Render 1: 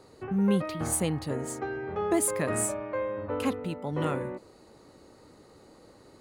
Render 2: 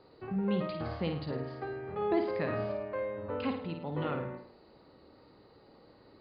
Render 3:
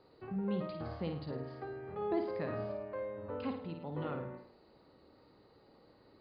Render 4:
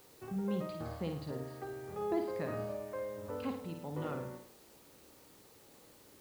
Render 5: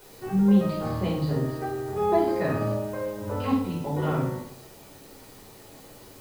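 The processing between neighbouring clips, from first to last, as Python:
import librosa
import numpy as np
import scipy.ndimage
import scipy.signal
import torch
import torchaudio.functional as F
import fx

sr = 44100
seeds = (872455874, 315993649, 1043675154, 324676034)

y1 = scipy.signal.sosfilt(scipy.signal.cheby1(8, 1.0, 4900.0, 'lowpass', fs=sr, output='sos'), x)
y1 = fx.room_flutter(y1, sr, wall_m=9.1, rt60_s=0.5)
y1 = F.gain(torch.from_numpy(y1), -4.5).numpy()
y2 = fx.dynamic_eq(y1, sr, hz=2500.0, q=0.98, threshold_db=-52.0, ratio=4.0, max_db=-5)
y2 = F.gain(torch.from_numpy(y2), -4.5).numpy()
y3 = fx.dmg_noise_colour(y2, sr, seeds[0], colour='white', level_db=-63.0)
y4 = fx.room_shoebox(y3, sr, seeds[1], volume_m3=230.0, walls='furnished', distance_m=4.8)
y4 = F.gain(torch.from_numpy(y4), 3.0).numpy()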